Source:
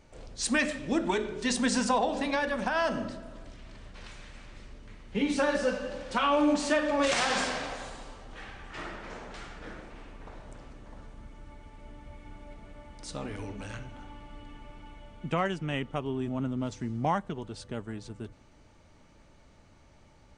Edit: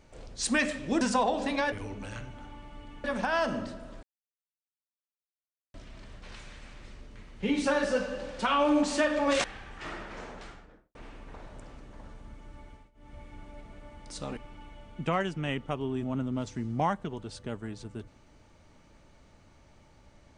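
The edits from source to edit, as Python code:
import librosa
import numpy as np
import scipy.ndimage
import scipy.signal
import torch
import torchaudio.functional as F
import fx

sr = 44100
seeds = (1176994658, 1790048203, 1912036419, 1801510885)

y = fx.studio_fade_out(x, sr, start_s=9.2, length_s=0.68)
y = fx.edit(y, sr, fx.cut(start_s=1.01, length_s=0.75),
    fx.insert_silence(at_s=3.46, length_s=1.71),
    fx.cut(start_s=7.16, length_s=1.21),
    fx.fade_down_up(start_s=11.57, length_s=0.57, db=-21.5, fade_s=0.27, curve='qsin'),
    fx.move(start_s=13.3, length_s=1.32, to_s=2.47), tone=tone)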